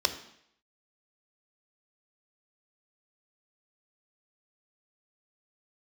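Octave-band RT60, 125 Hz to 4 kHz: 0.65, 0.70, 0.70, 0.70, 0.75, 0.70 seconds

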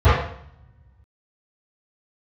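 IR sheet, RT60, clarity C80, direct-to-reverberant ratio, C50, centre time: 0.65 s, 5.0 dB, −19.5 dB, −1.0 dB, 64 ms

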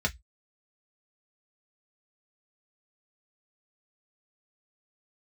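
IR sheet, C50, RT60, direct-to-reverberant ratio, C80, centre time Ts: 25.0 dB, 0.10 s, 0.5 dB, 38.0 dB, 6 ms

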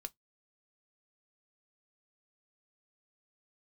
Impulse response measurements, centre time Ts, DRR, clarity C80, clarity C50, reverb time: 2 ms, 9.0 dB, 49.0 dB, 33.0 dB, 0.10 s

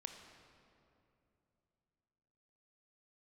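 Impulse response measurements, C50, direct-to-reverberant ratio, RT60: 5.5 dB, 4.5 dB, 2.8 s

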